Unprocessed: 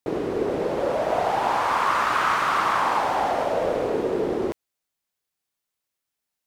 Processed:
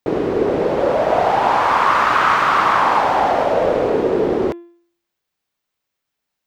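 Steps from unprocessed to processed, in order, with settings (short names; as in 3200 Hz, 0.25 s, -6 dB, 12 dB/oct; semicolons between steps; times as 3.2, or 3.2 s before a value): bell 11000 Hz -10.5 dB 1.4 oct; de-hum 343.6 Hz, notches 11; gain +7.5 dB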